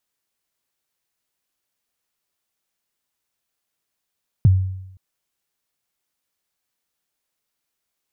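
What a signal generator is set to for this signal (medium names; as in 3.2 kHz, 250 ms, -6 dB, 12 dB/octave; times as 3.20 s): kick drum length 0.52 s, from 150 Hz, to 94 Hz, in 24 ms, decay 0.84 s, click off, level -7 dB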